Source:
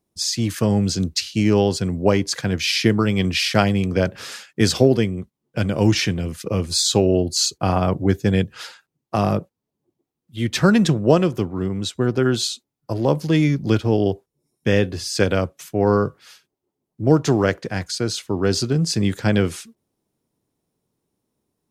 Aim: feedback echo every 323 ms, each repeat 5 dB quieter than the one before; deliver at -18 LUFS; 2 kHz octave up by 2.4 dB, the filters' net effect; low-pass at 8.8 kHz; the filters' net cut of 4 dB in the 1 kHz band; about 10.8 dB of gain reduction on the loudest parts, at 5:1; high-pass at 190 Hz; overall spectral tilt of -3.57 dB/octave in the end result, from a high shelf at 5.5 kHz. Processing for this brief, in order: high-pass 190 Hz; low-pass 8.8 kHz; peaking EQ 1 kHz -7.5 dB; peaking EQ 2 kHz +4.5 dB; treble shelf 5.5 kHz +6 dB; compression 5:1, threshold -24 dBFS; feedback delay 323 ms, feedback 56%, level -5 dB; trim +9 dB

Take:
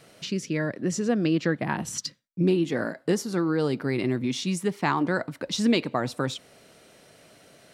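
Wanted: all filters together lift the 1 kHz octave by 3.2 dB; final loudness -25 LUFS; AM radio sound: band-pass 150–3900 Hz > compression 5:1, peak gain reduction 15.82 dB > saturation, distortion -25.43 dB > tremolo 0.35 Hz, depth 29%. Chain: band-pass 150–3900 Hz; peaking EQ 1 kHz +4 dB; compression 5:1, threshold -35 dBFS; saturation -24 dBFS; tremolo 0.35 Hz, depth 29%; trim +15.5 dB

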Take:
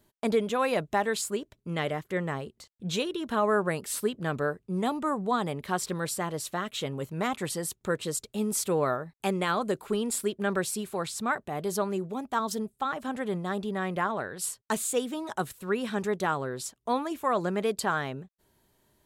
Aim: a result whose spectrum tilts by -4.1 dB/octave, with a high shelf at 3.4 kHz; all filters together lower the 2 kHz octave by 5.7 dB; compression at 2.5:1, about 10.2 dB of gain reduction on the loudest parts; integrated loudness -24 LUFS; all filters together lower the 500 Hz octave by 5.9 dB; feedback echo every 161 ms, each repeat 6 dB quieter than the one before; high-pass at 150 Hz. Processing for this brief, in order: high-pass 150 Hz; peaking EQ 500 Hz -7 dB; peaking EQ 2 kHz -8.5 dB; treble shelf 3.4 kHz +4 dB; compression 2.5:1, threshold -41 dBFS; feedback delay 161 ms, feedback 50%, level -6 dB; trim +15.5 dB

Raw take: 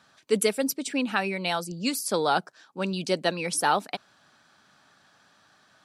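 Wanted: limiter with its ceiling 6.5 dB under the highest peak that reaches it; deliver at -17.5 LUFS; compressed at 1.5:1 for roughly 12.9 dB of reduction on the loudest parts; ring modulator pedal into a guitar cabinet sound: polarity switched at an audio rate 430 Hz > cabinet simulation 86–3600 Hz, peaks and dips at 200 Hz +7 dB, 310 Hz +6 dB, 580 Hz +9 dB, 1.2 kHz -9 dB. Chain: compression 1.5:1, threshold -55 dBFS; peak limiter -27.5 dBFS; polarity switched at an audio rate 430 Hz; cabinet simulation 86–3600 Hz, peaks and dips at 200 Hz +7 dB, 310 Hz +6 dB, 580 Hz +9 dB, 1.2 kHz -9 dB; trim +22.5 dB

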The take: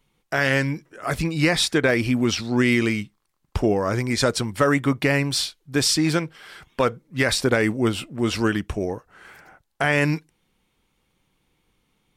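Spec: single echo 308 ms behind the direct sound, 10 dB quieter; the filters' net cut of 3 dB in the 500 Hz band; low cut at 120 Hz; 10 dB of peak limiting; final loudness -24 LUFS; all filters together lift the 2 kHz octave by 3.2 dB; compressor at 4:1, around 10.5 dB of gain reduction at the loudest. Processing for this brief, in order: high-pass 120 Hz; peaking EQ 500 Hz -4 dB; peaking EQ 2 kHz +4 dB; compression 4:1, threshold -27 dBFS; peak limiter -21 dBFS; delay 308 ms -10 dB; trim +8.5 dB

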